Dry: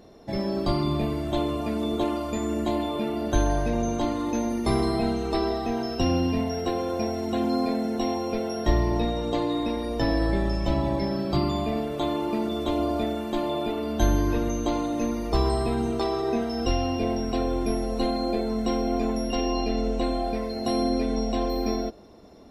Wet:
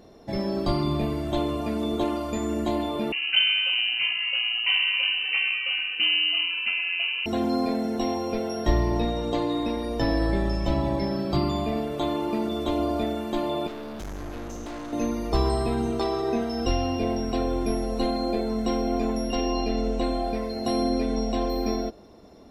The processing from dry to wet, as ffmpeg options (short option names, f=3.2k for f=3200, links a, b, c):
-filter_complex "[0:a]asettb=1/sr,asplit=3[a][b][c];[a]atrim=end=3.124[d];[b]atrim=start=3.12:end=7.26,asetpts=PTS-STARTPTS,afade=t=in:d=0.004:c=qsin,afade=t=out:st=4.136:d=0.004:c=qsin,lowpass=f=2.6k:t=q:w=0.5098,lowpass=f=2.6k:t=q:w=0.6013,lowpass=f=2.6k:t=q:w=0.9,lowpass=f=2.6k:t=q:w=2.563,afreqshift=-3100[e];[c]atrim=start=7.256[f];[d][e]acrossfade=d=0.004:c1=hsin:c2=qsin[g];[g][f]acrossfade=d=0.004:c1=qsin:c2=hsin,asettb=1/sr,asplit=3[h][i][j];[h]atrim=end=13.674[k];[i]atrim=start=13.67:end=14.93,asetpts=PTS-STARTPTS,afade=t=in:d=0.004:c=qsin,afade=t=out:st=1.256:d=0.004:c=qsin,aeval=exprs='(tanh(50.1*val(0)+0.4)-tanh(0.4))/50.1':c=same[l];[j]atrim=start=14.926[m];[k][l]acrossfade=d=0.004:c1=hsin:c2=qsin[n];[n][m]acrossfade=d=0.004:c1=qsin:c2=hsin"